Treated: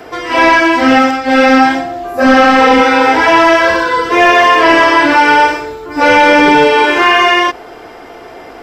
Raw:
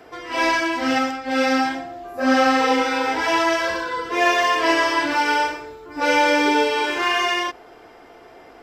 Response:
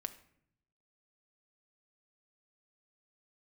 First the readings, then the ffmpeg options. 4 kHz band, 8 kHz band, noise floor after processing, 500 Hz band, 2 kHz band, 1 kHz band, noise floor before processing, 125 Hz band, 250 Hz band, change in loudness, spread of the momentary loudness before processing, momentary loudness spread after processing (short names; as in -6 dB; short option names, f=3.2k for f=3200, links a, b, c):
+8.5 dB, +5.0 dB, -32 dBFS, +11.5 dB, +11.5 dB, +12.0 dB, -46 dBFS, n/a, +11.5 dB, +11.5 dB, 9 LU, 7 LU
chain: -filter_complex "[0:a]acrossover=split=3000[a][b];[b]acompressor=threshold=-40dB:ratio=4:attack=1:release=60[c];[a][c]amix=inputs=2:normalize=0,apsyclip=15dB,volume=-1.5dB"